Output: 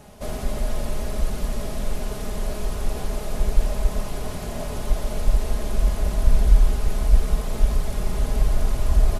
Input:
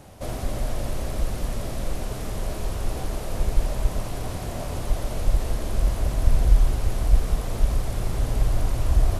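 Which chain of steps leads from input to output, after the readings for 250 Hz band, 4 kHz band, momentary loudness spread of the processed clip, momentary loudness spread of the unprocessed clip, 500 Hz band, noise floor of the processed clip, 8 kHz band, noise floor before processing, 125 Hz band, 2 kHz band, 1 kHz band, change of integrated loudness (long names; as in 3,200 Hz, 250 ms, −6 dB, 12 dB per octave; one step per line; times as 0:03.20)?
+1.5 dB, +1.0 dB, 9 LU, 8 LU, +1.5 dB, −30 dBFS, +1.0 dB, −32 dBFS, 0.0 dB, +1.0 dB, +0.5 dB, +1.0 dB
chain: comb filter 4.8 ms, depth 51%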